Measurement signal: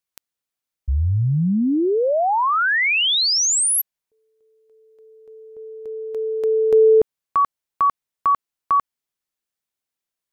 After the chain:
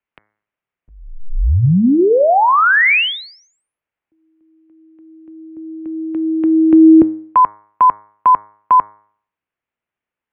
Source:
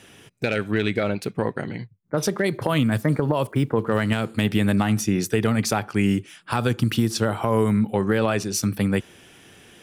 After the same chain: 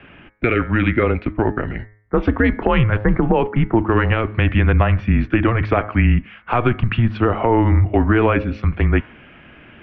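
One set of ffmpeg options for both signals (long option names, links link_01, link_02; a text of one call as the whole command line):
ffmpeg -i in.wav -af "highpass=frequency=160:width_type=q:width=0.5412,highpass=frequency=160:width_type=q:width=1.307,lowpass=frequency=2800:width_type=q:width=0.5176,lowpass=frequency=2800:width_type=q:width=0.7071,lowpass=frequency=2800:width_type=q:width=1.932,afreqshift=-120,bandreject=frequency=105.3:width_type=h:width=4,bandreject=frequency=210.6:width_type=h:width=4,bandreject=frequency=315.9:width_type=h:width=4,bandreject=frequency=421.2:width_type=h:width=4,bandreject=frequency=526.5:width_type=h:width=4,bandreject=frequency=631.8:width_type=h:width=4,bandreject=frequency=737.1:width_type=h:width=4,bandreject=frequency=842.4:width_type=h:width=4,bandreject=frequency=947.7:width_type=h:width=4,bandreject=frequency=1053:width_type=h:width=4,bandreject=frequency=1158.3:width_type=h:width=4,bandreject=frequency=1263.6:width_type=h:width=4,bandreject=frequency=1368.9:width_type=h:width=4,bandreject=frequency=1474.2:width_type=h:width=4,bandreject=frequency=1579.5:width_type=h:width=4,bandreject=frequency=1684.8:width_type=h:width=4,bandreject=frequency=1790.1:width_type=h:width=4,bandreject=frequency=1895.4:width_type=h:width=4,bandreject=frequency=2000.7:width_type=h:width=4,bandreject=frequency=2106:width_type=h:width=4,bandreject=frequency=2211.3:width_type=h:width=4,volume=7.5dB" out.wav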